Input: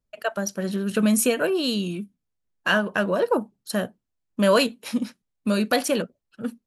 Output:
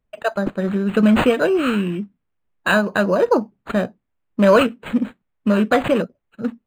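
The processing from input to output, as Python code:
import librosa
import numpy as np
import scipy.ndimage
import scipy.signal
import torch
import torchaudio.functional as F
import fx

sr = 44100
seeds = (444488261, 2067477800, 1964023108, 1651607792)

y = np.interp(np.arange(len(x)), np.arange(len(x))[::8], x[::8])
y = y * librosa.db_to_amplitude(6.0)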